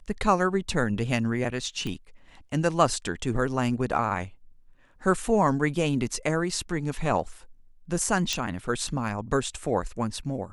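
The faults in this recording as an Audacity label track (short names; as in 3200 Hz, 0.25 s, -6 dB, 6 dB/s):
1.870000	1.870000	pop -21 dBFS
8.330000	8.330000	pop -13 dBFS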